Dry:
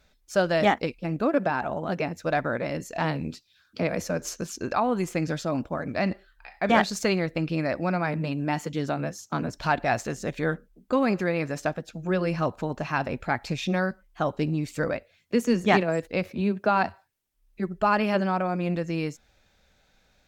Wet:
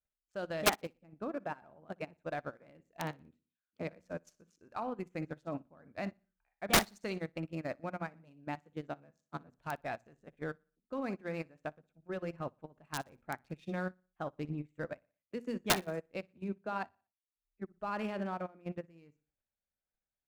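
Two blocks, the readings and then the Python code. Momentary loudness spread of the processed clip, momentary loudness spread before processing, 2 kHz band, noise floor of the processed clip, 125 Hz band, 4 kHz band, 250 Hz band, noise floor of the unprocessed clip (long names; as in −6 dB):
16 LU, 9 LU, −11.5 dB, below −85 dBFS, −14.5 dB, −4.5 dB, −14.5 dB, −65 dBFS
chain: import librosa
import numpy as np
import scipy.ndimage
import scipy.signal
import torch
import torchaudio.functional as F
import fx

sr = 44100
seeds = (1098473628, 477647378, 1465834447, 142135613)

y = fx.wiener(x, sr, points=9)
y = fx.hum_notches(y, sr, base_hz=60, count=4)
y = fx.level_steps(y, sr, step_db=9)
y = (np.mod(10.0 ** (16.0 / 20.0) * y + 1.0, 2.0) - 1.0) / 10.0 ** (16.0 / 20.0)
y = fx.vibrato(y, sr, rate_hz=1.5, depth_cents=30.0)
y = fx.echo_feedback(y, sr, ms=60, feedback_pct=44, wet_db=-14)
y = fx.upward_expand(y, sr, threshold_db=-39.0, expansion=2.5)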